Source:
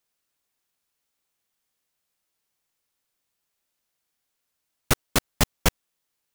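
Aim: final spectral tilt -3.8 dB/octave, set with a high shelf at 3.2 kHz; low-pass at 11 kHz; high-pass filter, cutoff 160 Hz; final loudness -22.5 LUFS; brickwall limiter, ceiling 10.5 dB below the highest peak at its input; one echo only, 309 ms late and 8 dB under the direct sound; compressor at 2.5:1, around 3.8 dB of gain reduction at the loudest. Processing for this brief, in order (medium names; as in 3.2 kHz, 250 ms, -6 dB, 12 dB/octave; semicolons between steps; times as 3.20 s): high-pass 160 Hz; low-pass 11 kHz; treble shelf 3.2 kHz -8.5 dB; compression 2.5:1, threshold -25 dBFS; peak limiter -23 dBFS; delay 309 ms -8 dB; trim +18.5 dB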